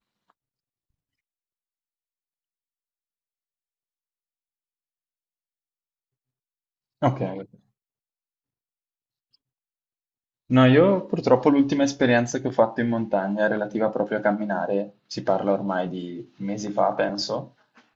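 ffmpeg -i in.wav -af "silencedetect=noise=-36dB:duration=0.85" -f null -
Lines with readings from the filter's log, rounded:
silence_start: 0.00
silence_end: 7.02 | silence_duration: 7.02
silence_start: 7.44
silence_end: 10.50 | silence_duration: 3.07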